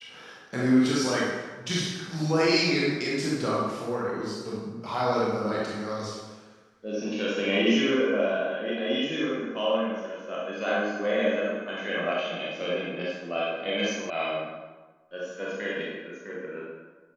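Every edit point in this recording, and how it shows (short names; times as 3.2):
14.1 sound cut off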